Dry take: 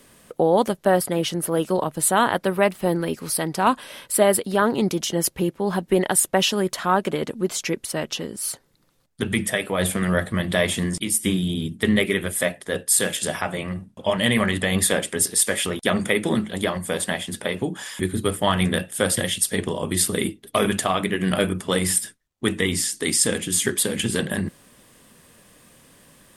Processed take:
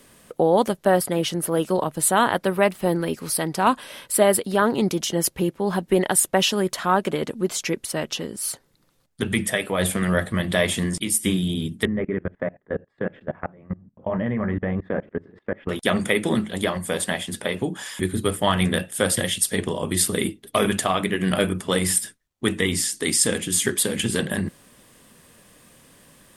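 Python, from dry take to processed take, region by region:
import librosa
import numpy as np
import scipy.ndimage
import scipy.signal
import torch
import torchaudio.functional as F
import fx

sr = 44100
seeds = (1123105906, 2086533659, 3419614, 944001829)

y = fx.chain(x, sr, fx.lowpass(hz=1800.0, slope=24),
    fx.tilt_shelf(db=4.0, hz=680.0),
    fx.level_steps(step_db=24), at=(11.85, 15.69))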